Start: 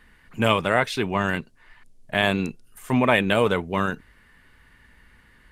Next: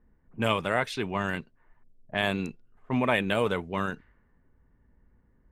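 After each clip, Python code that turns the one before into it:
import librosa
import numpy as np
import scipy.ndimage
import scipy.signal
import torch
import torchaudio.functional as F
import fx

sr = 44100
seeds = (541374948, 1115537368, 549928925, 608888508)

y = fx.env_lowpass(x, sr, base_hz=540.0, full_db=-19.0)
y = F.gain(torch.from_numpy(y), -6.0).numpy()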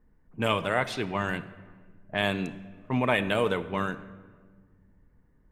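y = fx.room_shoebox(x, sr, seeds[0], volume_m3=1800.0, walls='mixed', distance_m=0.46)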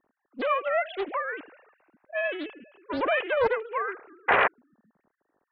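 y = fx.sine_speech(x, sr)
y = fx.spec_paint(y, sr, seeds[1], shape='noise', start_s=4.28, length_s=0.2, low_hz=390.0, high_hz=2100.0, level_db=-20.0)
y = fx.doppler_dist(y, sr, depth_ms=0.68)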